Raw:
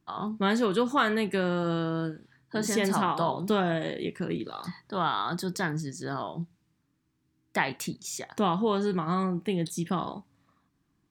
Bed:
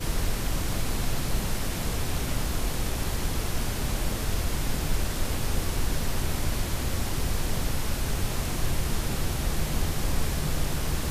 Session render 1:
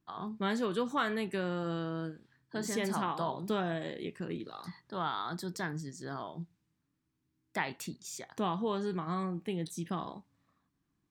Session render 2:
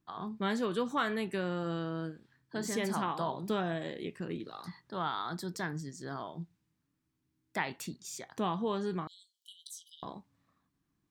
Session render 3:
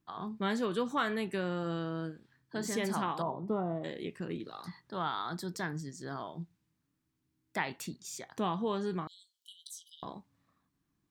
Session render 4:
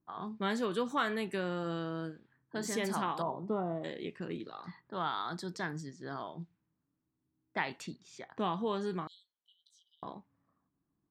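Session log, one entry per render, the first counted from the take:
gain -7 dB
9.07–10.03 brick-wall FIR high-pass 2900 Hz
3.22–3.84 polynomial smoothing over 65 samples
low-pass opened by the level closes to 1000 Hz, open at -32.5 dBFS; low shelf 140 Hz -6 dB

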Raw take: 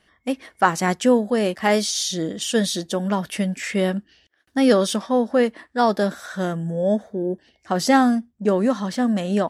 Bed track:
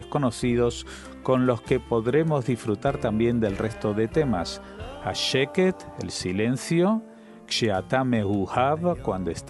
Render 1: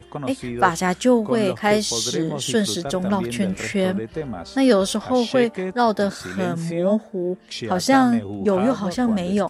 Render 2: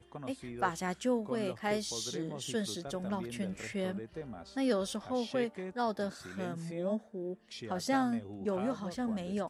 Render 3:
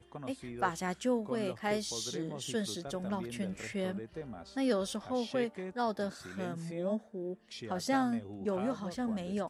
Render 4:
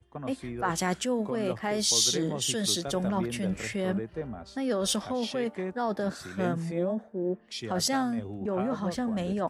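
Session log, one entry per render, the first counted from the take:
add bed track -6 dB
gain -14.5 dB
nothing audible
in parallel at +3 dB: negative-ratio compressor -36 dBFS, ratio -0.5; on the sum: three-band expander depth 70%

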